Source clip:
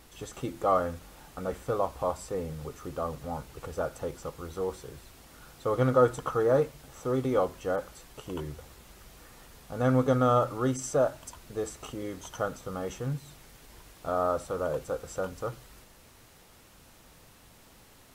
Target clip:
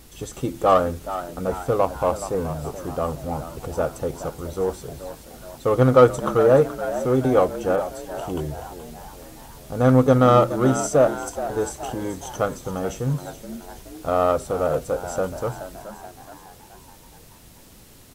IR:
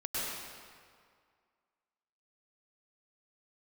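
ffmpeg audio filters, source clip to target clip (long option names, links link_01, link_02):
-filter_complex "[0:a]highshelf=frequency=3400:gain=7,asplit=2[link_01][link_02];[link_02]adynamicsmooth=sensitivity=1:basefreq=640,volume=2dB[link_03];[link_01][link_03]amix=inputs=2:normalize=0,asplit=6[link_04][link_05][link_06][link_07][link_08][link_09];[link_05]adelay=425,afreqshift=84,volume=-12.5dB[link_10];[link_06]adelay=850,afreqshift=168,volume=-18dB[link_11];[link_07]adelay=1275,afreqshift=252,volume=-23.5dB[link_12];[link_08]adelay=1700,afreqshift=336,volume=-29dB[link_13];[link_09]adelay=2125,afreqshift=420,volume=-34.6dB[link_14];[link_04][link_10][link_11][link_12][link_13][link_14]amix=inputs=6:normalize=0,volume=2dB"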